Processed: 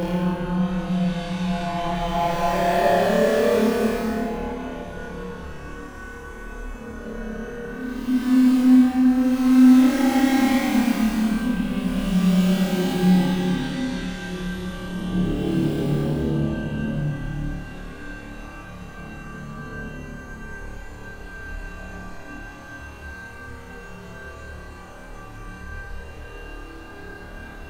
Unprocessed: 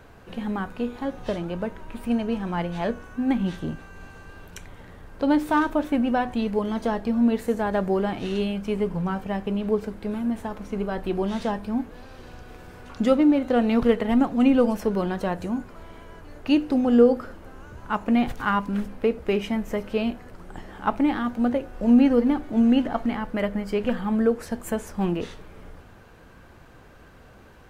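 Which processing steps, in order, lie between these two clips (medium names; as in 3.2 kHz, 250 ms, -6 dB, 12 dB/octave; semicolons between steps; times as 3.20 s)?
chunks repeated in reverse 131 ms, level -14 dB; in parallel at -11 dB: integer overflow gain 19.5 dB; on the sum: Paulstretch 16×, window 0.10 s, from 2.67 s; flutter echo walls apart 4.7 m, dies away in 0.74 s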